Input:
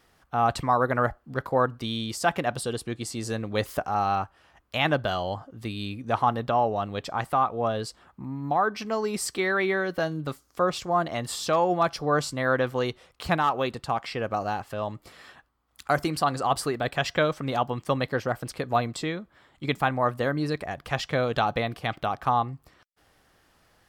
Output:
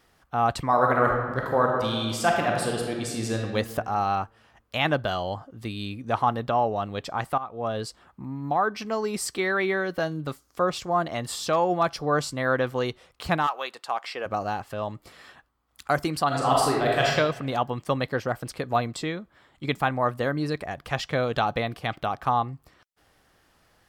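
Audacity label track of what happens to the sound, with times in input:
0.660000	3.430000	reverb throw, RT60 1.5 s, DRR 0 dB
7.380000	7.790000	fade in, from -16 dB
13.460000	14.250000	HPF 960 Hz -> 410 Hz
16.270000	17.100000	reverb throw, RT60 1 s, DRR -3 dB

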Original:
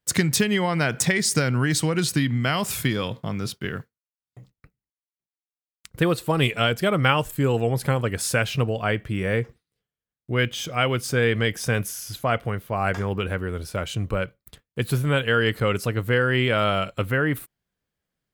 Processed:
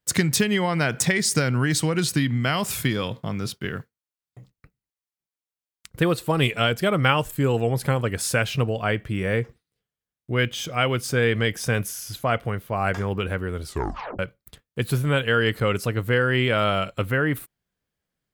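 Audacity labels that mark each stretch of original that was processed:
13.630000	13.630000	tape stop 0.56 s

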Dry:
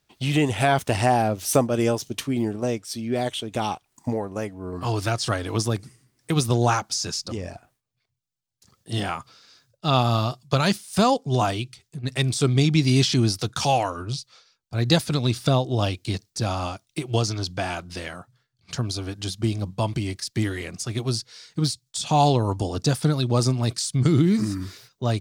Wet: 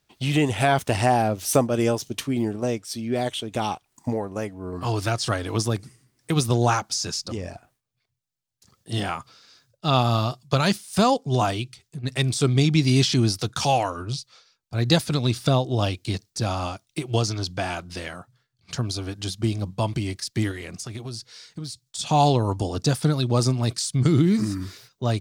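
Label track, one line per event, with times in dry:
20.510000	21.990000	compressor, threshold -30 dBFS

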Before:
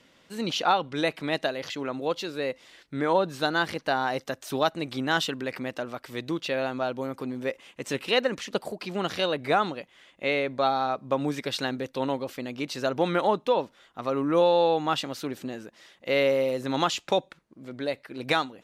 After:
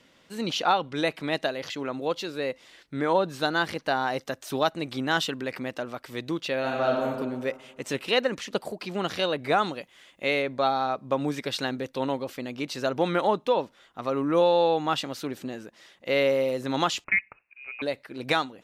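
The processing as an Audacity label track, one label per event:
6.590000	7.050000	reverb throw, RT60 1.5 s, DRR -2 dB
9.580000	10.420000	high shelf 5700 Hz +8.5 dB
17.040000	17.820000	inverted band carrier 2700 Hz

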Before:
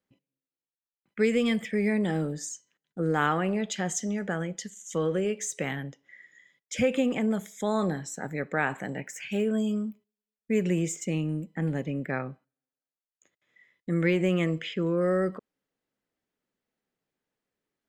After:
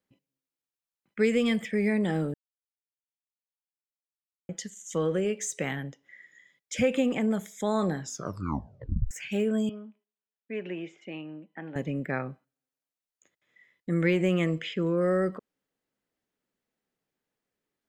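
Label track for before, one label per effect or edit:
2.340000	4.490000	mute
8.000000	8.000000	tape stop 1.11 s
9.690000	11.760000	speaker cabinet 440–3000 Hz, peaks and dips at 490 Hz -9 dB, 1200 Hz -5 dB, 2100 Hz -6 dB

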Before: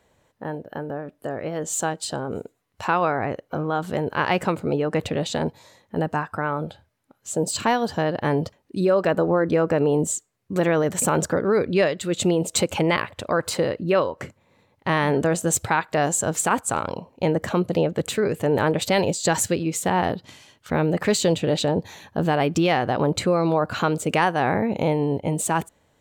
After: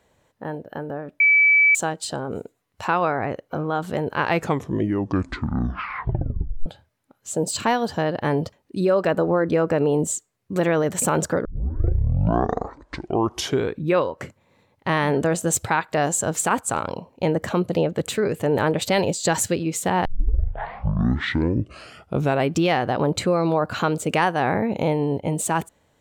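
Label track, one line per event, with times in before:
1.200000	1.750000	bleep 2300 Hz -12 dBFS
4.170000	4.170000	tape stop 2.49 s
11.450000	11.450000	tape start 2.65 s
20.050000	20.050000	tape start 2.51 s

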